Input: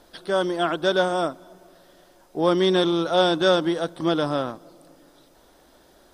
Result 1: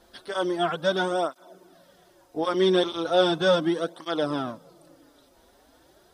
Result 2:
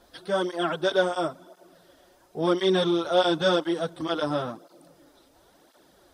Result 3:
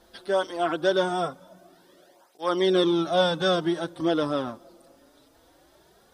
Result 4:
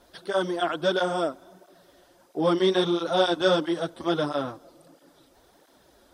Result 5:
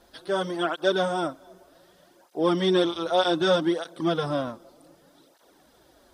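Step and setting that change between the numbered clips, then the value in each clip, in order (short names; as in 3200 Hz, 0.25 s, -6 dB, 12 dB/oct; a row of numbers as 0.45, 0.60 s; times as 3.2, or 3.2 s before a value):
tape flanging out of phase, nulls at: 0.37, 0.96, 0.21, 1.5, 0.65 Hz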